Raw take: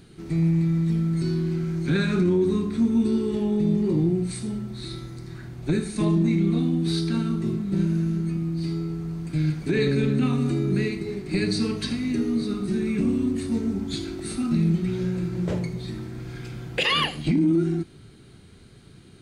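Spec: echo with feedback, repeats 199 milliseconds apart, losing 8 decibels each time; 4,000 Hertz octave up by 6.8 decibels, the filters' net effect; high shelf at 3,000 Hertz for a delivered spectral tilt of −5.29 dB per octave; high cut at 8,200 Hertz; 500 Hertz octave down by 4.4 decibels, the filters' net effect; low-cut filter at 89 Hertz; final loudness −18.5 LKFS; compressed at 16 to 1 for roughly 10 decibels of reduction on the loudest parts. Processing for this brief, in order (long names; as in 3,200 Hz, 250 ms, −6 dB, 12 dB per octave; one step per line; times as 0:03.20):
high-pass filter 89 Hz
low-pass filter 8,200 Hz
parametric band 500 Hz −7 dB
high-shelf EQ 3,000 Hz +5 dB
parametric band 4,000 Hz +5.5 dB
downward compressor 16 to 1, threshold −25 dBFS
repeating echo 199 ms, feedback 40%, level −8 dB
level +11 dB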